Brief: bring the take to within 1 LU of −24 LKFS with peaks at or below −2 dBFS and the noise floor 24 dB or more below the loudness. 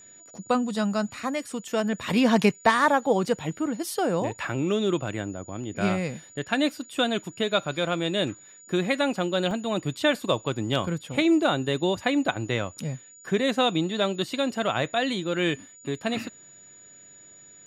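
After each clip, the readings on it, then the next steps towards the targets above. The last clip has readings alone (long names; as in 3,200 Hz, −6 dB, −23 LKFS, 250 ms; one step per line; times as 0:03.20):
number of dropouts 1; longest dropout 1.5 ms; interfering tone 6,900 Hz; level of the tone −48 dBFS; integrated loudness −26.0 LKFS; sample peak −5.0 dBFS; target loudness −24.0 LKFS
→ repair the gap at 0:09.51, 1.5 ms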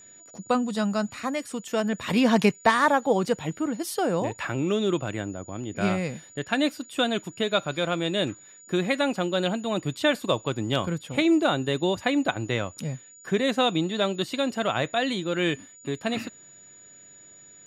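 number of dropouts 0; interfering tone 6,900 Hz; level of the tone −48 dBFS
→ notch filter 6,900 Hz, Q 30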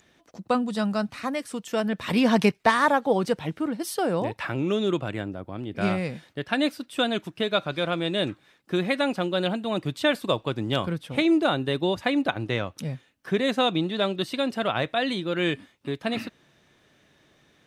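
interfering tone none found; integrated loudness −26.0 LKFS; sample peak −5.0 dBFS; target loudness −24.0 LKFS
→ level +2 dB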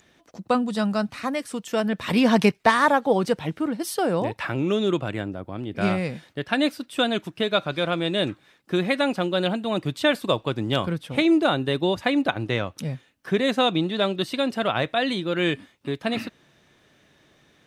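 integrated loudness −24.0 LKFS; sample peak −3.0 dBFS; background noise floor −61 dBFS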